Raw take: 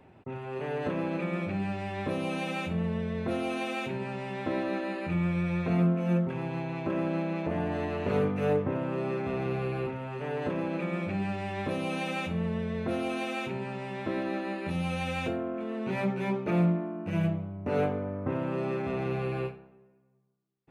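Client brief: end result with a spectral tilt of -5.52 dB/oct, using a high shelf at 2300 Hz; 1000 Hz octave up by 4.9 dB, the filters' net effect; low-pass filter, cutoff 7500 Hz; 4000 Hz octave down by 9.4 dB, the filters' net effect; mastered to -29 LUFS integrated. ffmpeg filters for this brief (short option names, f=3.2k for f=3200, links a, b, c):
-af "lowpass=7.5k,equalizer=f=1k:t=o:g=8.5,highshelf=f=2.3k:g=-8.5,equalizer=f=4k:t=o:g=-6.5,volume=1.5dB"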